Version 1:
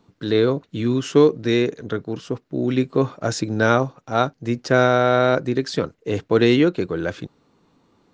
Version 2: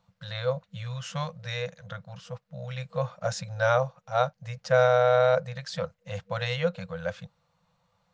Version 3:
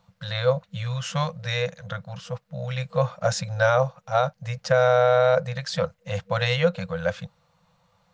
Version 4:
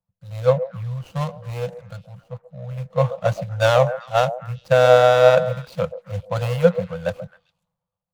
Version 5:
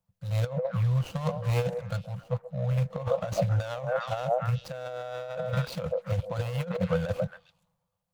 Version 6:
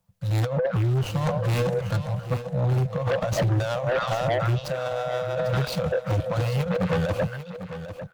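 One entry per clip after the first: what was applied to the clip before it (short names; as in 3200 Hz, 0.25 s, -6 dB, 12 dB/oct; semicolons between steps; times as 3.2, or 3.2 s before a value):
FFT band-reject 200–480 Hz; dynamic EQ 390 Hz, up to +8 dB, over -31 dBFS, Q 0.9; gain -7.5 dB
limiter -16 dBFS, peak gain reduction 6.5 dB; gain +6.5 dB
median filter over 25 samples; delay with a stepping band-pass 0.134 s, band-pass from 550 Hz, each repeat 1.4 oct, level -8 dB; three-band expander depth 70%; gain +3.5 dB
limiter -12.5 dBFS, peak gain reduction 11 dB; negative-ratio compressor -27 dBFS, ratio -0.5
in parallel at -12 dB: sine folder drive 13 dB, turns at -14 dBFS; on the sum: echo 0.797 s -11.5 dB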